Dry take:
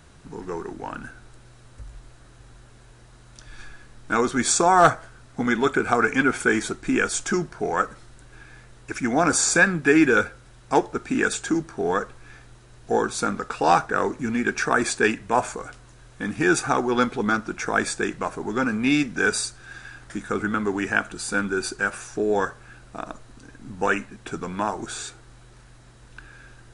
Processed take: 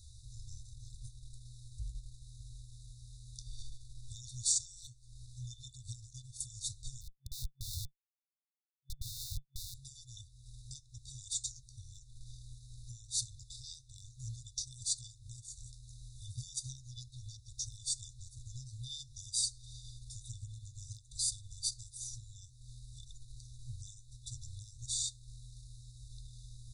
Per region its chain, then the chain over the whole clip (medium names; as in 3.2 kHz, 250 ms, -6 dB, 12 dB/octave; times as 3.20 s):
7.01–9.74 s: cascade formant filter u + peaking EQ 660 Hz +12 dB 1.3 oct + Schmitt trigger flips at -37.5 dBFS
whole clip: compression 6:1, threshold -26 dBFS; transient shaper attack -2 dB, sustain -6 dB; FFT band-reject 130–3500 Hz